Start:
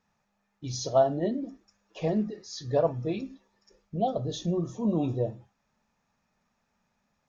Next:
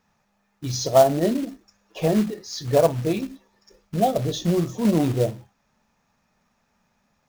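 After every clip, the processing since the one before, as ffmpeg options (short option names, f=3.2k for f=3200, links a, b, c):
-af "acrusher=bits=4:mode=log:mix=0:aa=0.000001,volume=7dB"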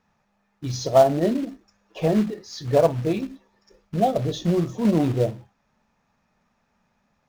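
-af "highshelf=f=5.9k:g=-10.5"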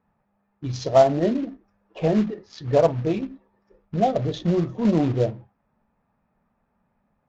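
-af "adynamicsmooth=sensitivity=6.5:basefreq=1.5k" -ar 16000 -c:a libvorbis -b:a 64k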